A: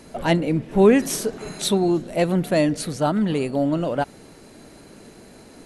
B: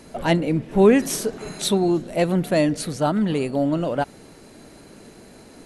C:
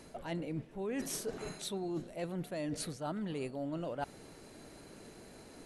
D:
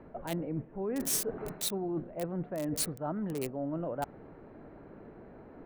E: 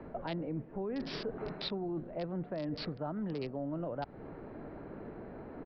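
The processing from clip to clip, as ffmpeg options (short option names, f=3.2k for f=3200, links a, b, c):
-af anull
-af "equalizer=f=220:w=2.1:g=-3,areverse,acompressor=threshold=-28dB:ratio=12,areverse,volume=-7dB"
-filter_complex "[0:a]acrossover=split=450|1700[a][b][c];[c]acrusher=bits=6:mix=0:aa=0.000001[d];[a][b][d]amix=inputs=3:normalize=0,crystalizer=i=1:c=0,volume=3.5dB"
-filter_complex "[0:a]aresample=11025,aresample=44100,acrossover=split=140|4000[a][b][c];[a]acompressor=threshold=-53dB:ratio=4[d];[b]acompressor=threshold=-41dB:ratio=4[e];[c]acompressor=threshold=-56dB:ratio=4[f];[d][e][f]amix=inputs=3:normalize=0,volume=4.5dB"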